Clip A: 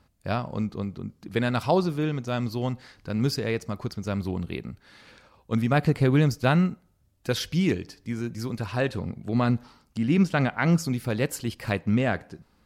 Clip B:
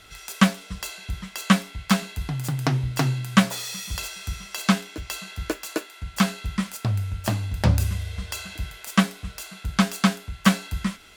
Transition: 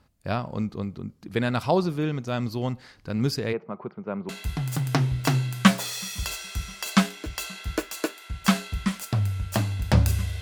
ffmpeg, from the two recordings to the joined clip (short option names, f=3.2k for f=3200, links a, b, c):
-filter_complex "[0:a]asplit=3[a][b][c];[a]afade=t=out:st=3.52:d=0.02[d];[b]highpass=f=170:w=0.5412,highpass=f=170:w=1.3066,equalizer=f=270:t=q:w=4:g=-9,equalizer=f=390:t=q:w=4:g=3,equalizer=f=890:t=q:w=4:g=3,equalizer=f=1.8k:t=q:w=4:g=-8,lowpass=f=2.1k:w=0.5412,lowpass=f=2.1k:w=1.3066,afade=t=in:st=3.52:d=0.02,afade=t=out:st=4.29:d=0.02[e];[c]afade=t=in:st=4.29:d=0.02[f];[d][e][f]amix=inputs=3:normalize=0,apad=whole_dur=10.41,atrim=end=10.41,atrim=end=4.292[g];[1:a]atrim=start=2.008:end=8.13[h];[g][h]acrossfade=d=0.004:c1=hsin:c2=hsin"